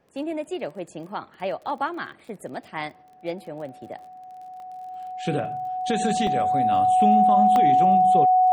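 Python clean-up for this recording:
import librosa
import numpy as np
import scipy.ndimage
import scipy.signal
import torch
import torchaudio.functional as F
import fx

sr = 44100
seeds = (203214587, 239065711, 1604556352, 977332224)

y = fx.fix_declick_ar(x, sr, threshold=6.5)
y = fx.notch(y, sr, hz=740.0, q=30.0)
y = fx.fix_interpolate(y, sr, at_s=(3.99, 4.6, 6.27, 7.56), length_ms=1.2)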